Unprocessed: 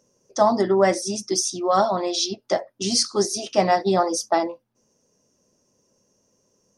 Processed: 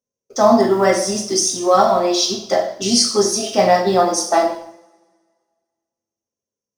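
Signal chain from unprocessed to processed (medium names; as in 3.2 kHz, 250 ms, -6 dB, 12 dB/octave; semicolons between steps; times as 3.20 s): companding laws mixed up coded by mu; gate -50 dBFS, range -37 dB; two-slope reverb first 0.57 s, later 1.8 s, from -25 dB, DRR -0.5 dB; trim +2 dB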